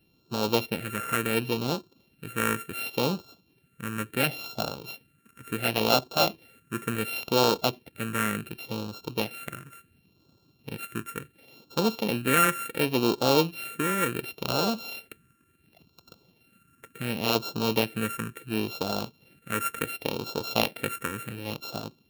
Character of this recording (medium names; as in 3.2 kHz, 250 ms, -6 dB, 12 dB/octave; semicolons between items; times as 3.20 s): a buzz of ramps at a fixed pitch in blocks of 32 samples; phasing stages 4, 0.7 Hz, lowest notch 770–1900 Hz